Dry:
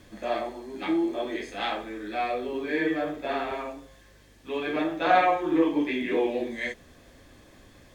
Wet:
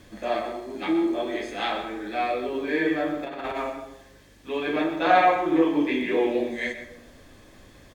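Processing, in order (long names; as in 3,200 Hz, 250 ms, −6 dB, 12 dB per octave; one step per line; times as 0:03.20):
0:03.23–0:03.70: compressor whose output falls as the input rises −33 dBFS, ratio −0.5
single-tap delay 125 ms −13 dB
convolution reverb RT60 0.85 s, pre-delay 85 ms, DRR 11.5 dB
level +2 dB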